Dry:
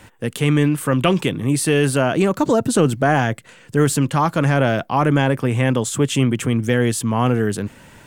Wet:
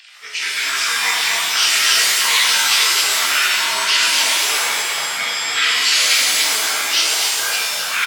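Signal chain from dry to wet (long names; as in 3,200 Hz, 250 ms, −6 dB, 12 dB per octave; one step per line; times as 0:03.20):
partials spread apart or drawn together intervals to 85%
high-pass with resonance 2,800 Hz, resonance Q 4.1
on a send: single-tap delay 259 ms −6 dB
on the sum: delay with pitch and tempo change per echo 81 ms, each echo −6 semitones, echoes 2
flanger 0.39 Hz, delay 1.1 ms, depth 3.5 ms, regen −42%
boost into a limiter +15.5 dB
reverb with rising layers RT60 1.4 s, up +7 semitones, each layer −2 dB, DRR −2.5 dB
level −7.5 dB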